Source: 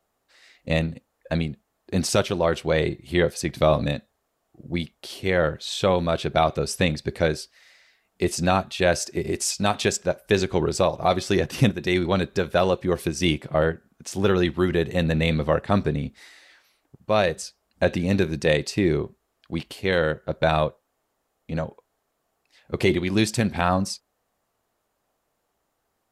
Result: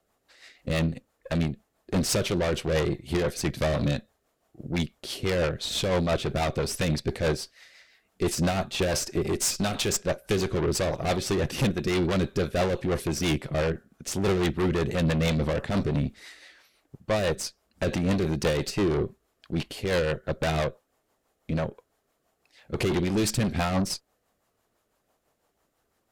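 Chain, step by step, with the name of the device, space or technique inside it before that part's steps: overdriven rotary cabinet (valve stage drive 27 dB, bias 0.6; rotary cabinet horn 6 Hz); trim +7 dB

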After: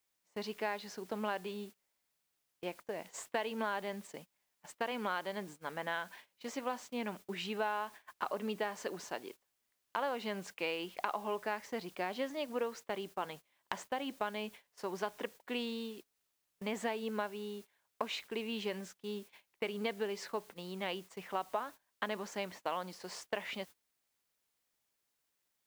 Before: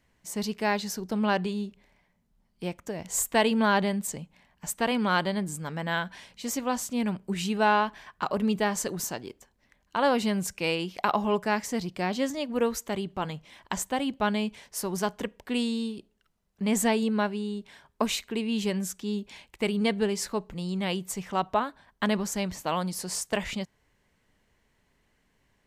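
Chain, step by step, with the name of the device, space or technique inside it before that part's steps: baby monitor (band-pass 380–3300 Hz; compression 6:1, threshold -29 dBFS, peak gain reduction 11 dB; white noise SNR 21 dB; gate -46 dBFS, range -21 dB); trim -3 dB

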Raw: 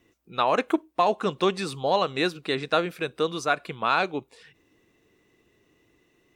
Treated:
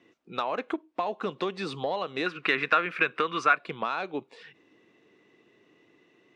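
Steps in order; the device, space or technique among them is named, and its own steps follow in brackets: high-pass 86 Hz; AM radio (band-pass 170–4100 Hz; compression 6:1, threshold -30 dBFS, peak gain reduction 13 dB; saturation -18.5 dBFS, distortion -24 dB); 2.26–3.57 s: high-order bell 1.7 kHz +12 dB; trim +3.5 dB

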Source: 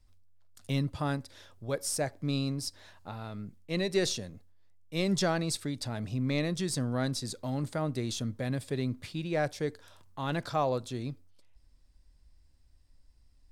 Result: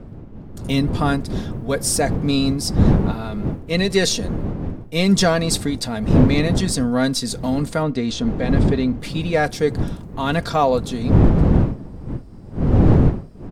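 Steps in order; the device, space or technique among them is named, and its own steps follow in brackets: comb 4.3 ms, depth 58%; 7.83–9.00 s: distance through air 110 m; smartphone video outdoors (wind noise 200 Hz -31 dBFS; level rider gain up to 10 dB; trim +1.5 dB; AAC 96 kbps 44.1 kHz)

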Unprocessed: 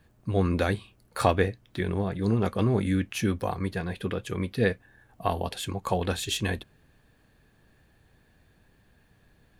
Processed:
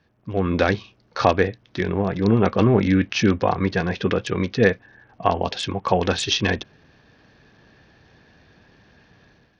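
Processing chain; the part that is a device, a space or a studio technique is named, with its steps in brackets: Bluetooth headset (high-pass 140 Hz 6 dB/octave; level rider gain up to 11 dB; resampled via 16 kHz; SBC 64 kbps 48 kHz)

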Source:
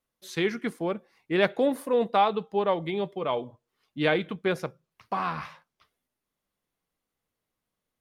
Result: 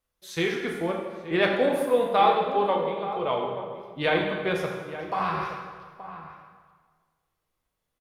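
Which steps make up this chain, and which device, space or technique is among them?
low shelf boost with a cut just above (bass shelf 77 Hz +7 dB; peaking EQ 230 Hz -6 dB 0.95 oct); 2.66–3.07 s: gate -25 dBFS, range -8 dB; echo from a far wall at 150 m, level -12 dB; plate-style reverb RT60 1.6 s, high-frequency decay 0.75×, DRR 0 dB

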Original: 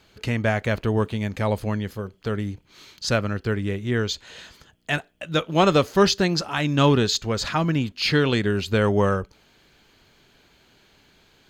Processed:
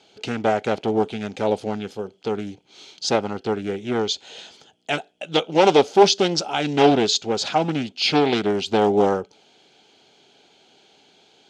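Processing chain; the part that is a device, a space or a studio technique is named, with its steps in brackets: full-range speaker at full volume (loudspeaker Doppler distortion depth 0.58 ms; cabinet simulation 220–9000 Hz, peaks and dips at 420 Hz +4 dB, 780 Hz +9 dB, 1.1 kHz -9 dB, 1.8 kHz -9 dB, 3.3 kHz +5 dB, 5.7 kHz +3 dB); trim +1.5 dB

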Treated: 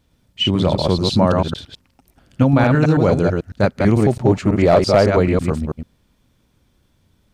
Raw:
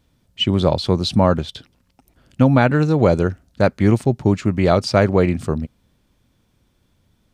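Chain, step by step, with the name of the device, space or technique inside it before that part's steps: chunks repeated in reverse 110 ms, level -3 dB; 3.99–5.10 s: peaking EQ 610 Hz +6 dB 1.5 oct; clipper into limiter (hard clipper -2.5 dBFS, distortion -23 dB; peak limiter -5 dBFS, peak gain reduction 2.5 dB)

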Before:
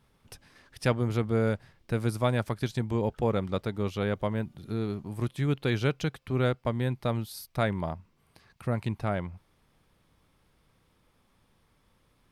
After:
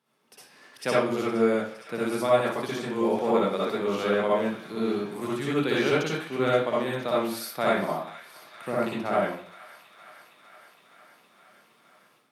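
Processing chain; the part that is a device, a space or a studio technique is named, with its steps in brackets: high-pass 260 Hz 12 dB/octave; feedback echo behind a high-pass 463 ms, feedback 73%, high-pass 1.4 kHz, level -15 dB; far laptop microphone (reverberation RT60 0.50 s, pre-delay 53 ms, DRR -6 dB; high-pass 130 Hz 24 dB/octave; level rider gain up to 9 dB); trim -8 dB

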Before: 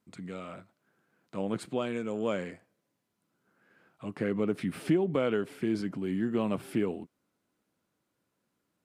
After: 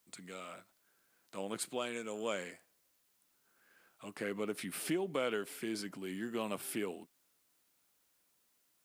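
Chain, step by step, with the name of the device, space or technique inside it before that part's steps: turntable without a phono preamp (RIAA curve recording; white noise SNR 36 dB); trim -4 dB

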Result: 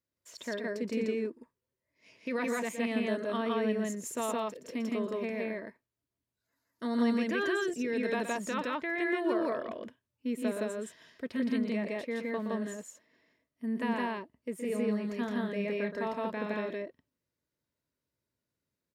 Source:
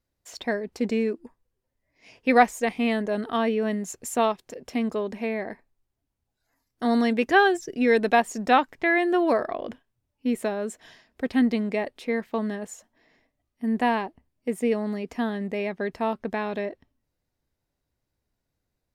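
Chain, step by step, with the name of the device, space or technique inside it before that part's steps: PA system with an anti-feedback notch (high-pass 110 Hz 12 dB/octave; Butterworth band-stop 770 Hz, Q 4.3; peak limiter -17.5 dBFS, peak gain reduction 9 dB); 14.58–16.14 s: doubling 29 ms -10 dB; loudspeakers at several distances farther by 41 m -9 dB, 57 m 0 dB; trim -8 dB

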